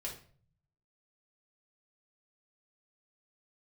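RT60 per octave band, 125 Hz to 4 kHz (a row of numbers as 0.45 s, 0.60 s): 1.1 s, 0.85 s, 0.50 s, 0.45 s, 0.40 s, 0.35 s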